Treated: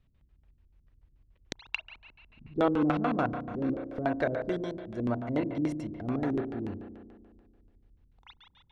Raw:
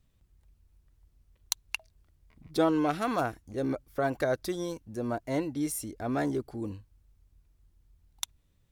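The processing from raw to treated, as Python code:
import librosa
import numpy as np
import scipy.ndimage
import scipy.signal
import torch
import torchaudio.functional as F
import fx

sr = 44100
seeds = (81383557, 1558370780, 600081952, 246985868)

y = fx.rev_spring(x, sr, rt60_s=1.9, pass_ms=(33,), chirp_ms=55, drr_db=4.5)
y = fx.filter_lfo_lowpass(y, sr, shape='square', hz=6.9, low_hz=290.0, high_hz=2900.0, q=1.0)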